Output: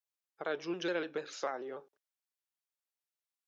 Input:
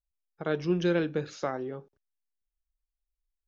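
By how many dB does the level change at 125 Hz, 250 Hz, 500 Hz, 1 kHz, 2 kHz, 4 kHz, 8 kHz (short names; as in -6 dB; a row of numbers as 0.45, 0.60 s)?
-21.5 dB, -11.0 dB, -7.0 dB, -3.5 dB, -3.5 dB, -2.0 dB, n/a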